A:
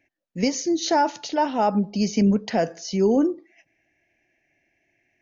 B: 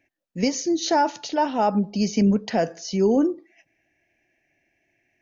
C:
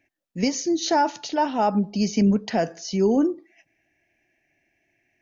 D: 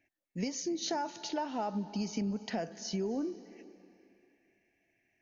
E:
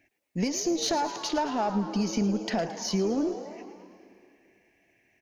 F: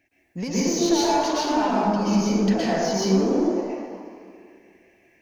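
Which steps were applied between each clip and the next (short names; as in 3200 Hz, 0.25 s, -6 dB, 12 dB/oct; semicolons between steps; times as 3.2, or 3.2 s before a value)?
notch 2100 Hz, Q 30
bell 510 Hz -3.5 dB 0.32 oct
compressor, threshold -25 dBFS, peak gain reduction 10 dB; on a send at -16.5 dB: reverb RT60 2.6 s, pre-delay 0.234 s; on the sum: gain -6.5 dB
one diode to ground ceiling -27.5 dBFS; on a send: frequency-shifting echo 0.11 s, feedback 55%, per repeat +120 Hz, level -13 dB; on the sum: gain +8.5 dB
in parallel at -9.5 dB: hard clip -31 dBFS, distortion -7 dB; on the sum: plate-style reverb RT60 1.5 s, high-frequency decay 0.45×, pre-delay 0.105 s, DRR -8 dB; gain -3.5 dB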